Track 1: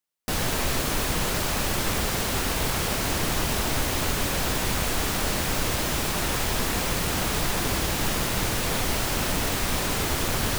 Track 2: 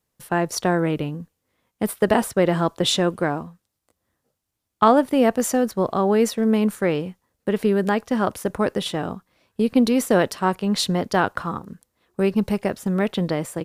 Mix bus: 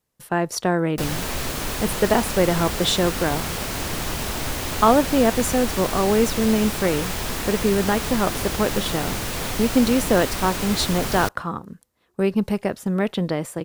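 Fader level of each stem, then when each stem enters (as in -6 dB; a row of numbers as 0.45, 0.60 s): -1.5, -0.5 dB; 0.70, 0.00 s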